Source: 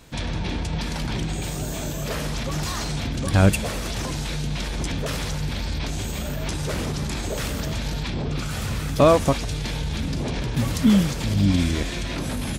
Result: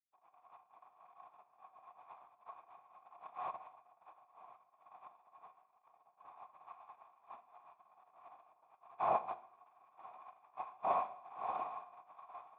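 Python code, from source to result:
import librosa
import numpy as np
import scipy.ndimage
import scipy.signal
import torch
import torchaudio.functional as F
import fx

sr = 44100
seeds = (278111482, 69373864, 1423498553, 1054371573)

y = scipy.signal.sosfilt(scipy.signal.butter(2, 280.0, 'highpass', fs=sr, output='sos'), x)
y = fx.spec_gate(y, sr, threshold_db=-25, keep='weak')
y = np.sign(y) * np.maximum(np.abs(y) - 10.0 ** (-55.5 / 20.0), 0.0)
y = fx.noise_vocoder(y, sr, seeds[0], bands=2)
y = fx.formant_cascade(y, sr, vowel='a')
y = fx.rev_gated(y, sr, seeds[1], gate_ms=260, shape='falling', drr_db=11.0)
y = fx.band_squash(y, sr, depth_pct=40, at=(11.46, 12.16))
y = F.gain(torch.from_numpy(y), 18.0).numpy()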